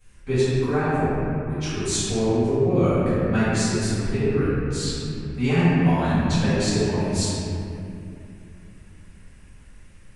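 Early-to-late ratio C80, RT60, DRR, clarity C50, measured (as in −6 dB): −3.0 dB, 2.7 s, −15.0 dB, −5.5 dB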